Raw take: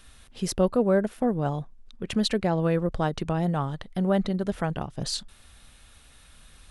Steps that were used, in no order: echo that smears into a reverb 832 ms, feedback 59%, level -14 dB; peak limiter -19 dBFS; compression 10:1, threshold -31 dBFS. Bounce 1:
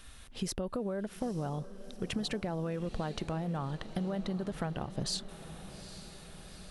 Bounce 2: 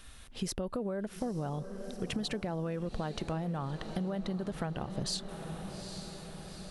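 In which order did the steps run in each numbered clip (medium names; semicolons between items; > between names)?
peak limiter > compression > echo that smears into a reverb; peak limiter > echo that smears into a reverb > compression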